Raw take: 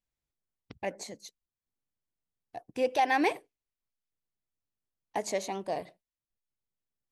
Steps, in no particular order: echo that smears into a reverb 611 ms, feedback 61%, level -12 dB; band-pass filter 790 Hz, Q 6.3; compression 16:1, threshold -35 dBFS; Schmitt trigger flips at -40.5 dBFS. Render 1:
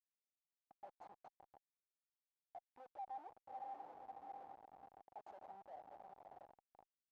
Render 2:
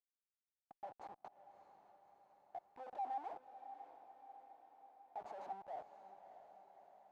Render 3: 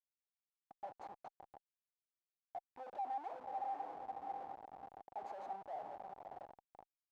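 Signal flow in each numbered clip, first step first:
echo that smears into a reverb > compression > Schmitt trigger > band-pass filter; Schmitt trigger > echo that smears into a reverb > compression > band-pass filter; echo that smears into a reverb > Schmitt trigger > band-pass filter > compression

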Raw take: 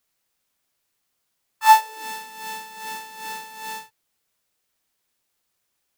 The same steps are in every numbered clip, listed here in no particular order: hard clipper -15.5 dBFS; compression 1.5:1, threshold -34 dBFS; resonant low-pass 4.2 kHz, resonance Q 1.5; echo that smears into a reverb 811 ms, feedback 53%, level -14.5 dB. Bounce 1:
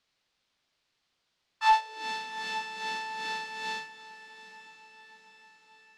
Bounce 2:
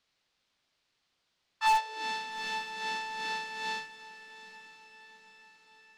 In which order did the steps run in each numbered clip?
compression > echo that smears into a reverb > hard clipper > resonant low-pass; resonant low-pass > hard clipper > compression > echo that smears into a reverb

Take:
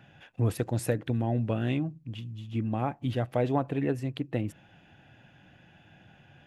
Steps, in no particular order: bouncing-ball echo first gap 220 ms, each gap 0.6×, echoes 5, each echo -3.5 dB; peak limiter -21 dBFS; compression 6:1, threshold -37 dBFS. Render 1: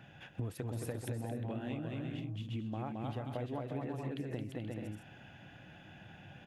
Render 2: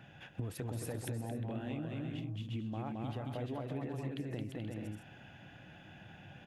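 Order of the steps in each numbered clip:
bouncing-ball echo > compression > peak limiter; peak limiter > bouncing-ball echo > compression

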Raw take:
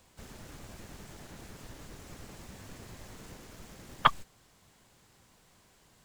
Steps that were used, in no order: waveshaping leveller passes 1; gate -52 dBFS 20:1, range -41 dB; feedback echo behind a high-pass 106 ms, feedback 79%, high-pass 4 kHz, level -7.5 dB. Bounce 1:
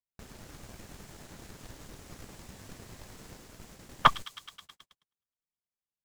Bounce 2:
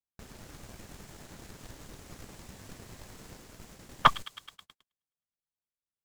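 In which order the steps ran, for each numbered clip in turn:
waveshaping leveller > feedback echo behind a high-pass > gate; feedback echo behind a high-pass > waveshaping leveller > gate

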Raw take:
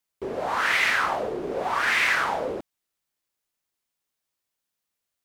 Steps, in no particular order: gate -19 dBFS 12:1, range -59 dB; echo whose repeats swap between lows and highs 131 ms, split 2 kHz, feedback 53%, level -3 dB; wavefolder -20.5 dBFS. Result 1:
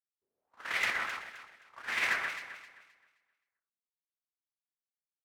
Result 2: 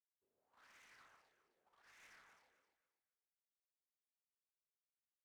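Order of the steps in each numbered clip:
gate > wavefolder > echo whose repeats swap between lows and highs; wavefolder > gate > echo whose repeats swap between lows and highs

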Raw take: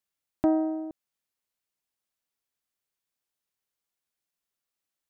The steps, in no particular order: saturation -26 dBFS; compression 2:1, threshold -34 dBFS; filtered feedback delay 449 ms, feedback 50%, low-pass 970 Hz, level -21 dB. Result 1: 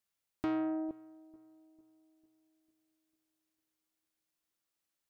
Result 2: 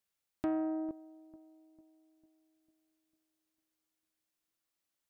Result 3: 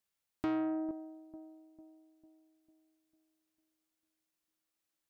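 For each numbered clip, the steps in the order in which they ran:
saturation > compression > filtered feedback delay; compression > filtered feedback delay > saturation; filtered feedback delay > saturation > compression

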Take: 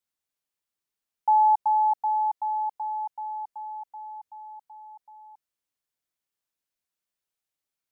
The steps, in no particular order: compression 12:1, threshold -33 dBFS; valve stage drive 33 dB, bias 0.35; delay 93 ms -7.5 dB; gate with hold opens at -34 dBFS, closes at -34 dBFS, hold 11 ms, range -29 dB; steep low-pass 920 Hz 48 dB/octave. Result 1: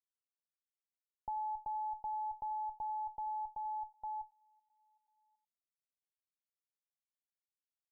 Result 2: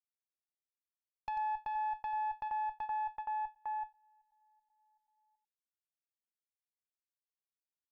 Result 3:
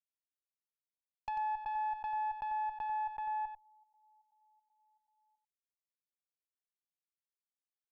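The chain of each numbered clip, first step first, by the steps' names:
delay > compression > gate with hold > valve stage > steep low-pass; steep low-pass > compression > valve stage > delay > gate with hold; steep low-pass > gate with hold > compression > valve stage > delay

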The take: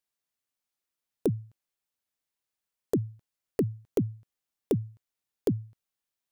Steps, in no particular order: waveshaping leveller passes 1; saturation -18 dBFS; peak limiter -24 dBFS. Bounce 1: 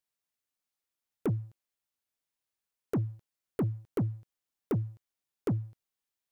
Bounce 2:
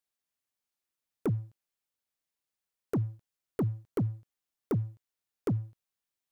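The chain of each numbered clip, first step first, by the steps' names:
saturation > peak limiter > waveshaping leveller; waveshaping leveller > saturation > peak limiter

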